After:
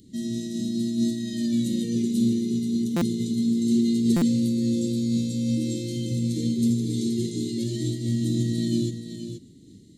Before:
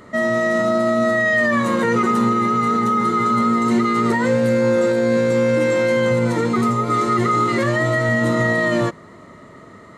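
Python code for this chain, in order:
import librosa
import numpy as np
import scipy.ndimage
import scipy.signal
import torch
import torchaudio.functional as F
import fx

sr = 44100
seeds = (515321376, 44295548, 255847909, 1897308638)

p1 = scipy.signal.sosfilt(scipy.signal.ellip(3, 1.0, 70, [310.0, 3600.0], 'bandstop', fs=sr, output='sos'), x)
p2 = fx.high_shelf(p1, sr, hz=6200.0, db=4.5)
p3 = p2 + fx.echo_single(p2, sr, ms=477, db=-8.0, dry=0)
p4 = fx.buffer_glitch(p3, sr, at_s=(2.96, 4.16), block=256, repeats=9)
y = fx.am_noise(p4, sr, seeds[0], hz=5.7, depth_pct=60)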